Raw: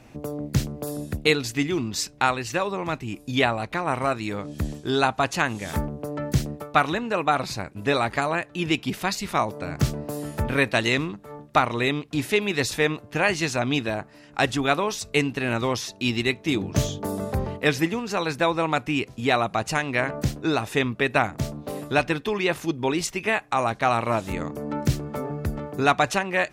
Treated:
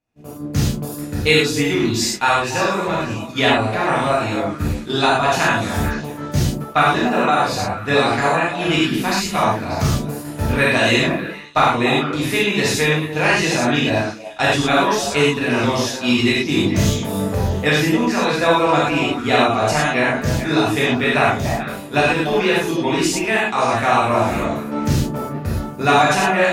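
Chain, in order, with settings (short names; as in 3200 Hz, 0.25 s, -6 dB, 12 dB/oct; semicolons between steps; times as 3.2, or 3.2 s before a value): delay with a stepping band-pass 0.146 s, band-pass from 240 Hz, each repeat 1.4 oct, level -3.5 dB; non-linear reverb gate 0.14 s flat, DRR -7 dB; expander -21 dBFS; gain -1 dB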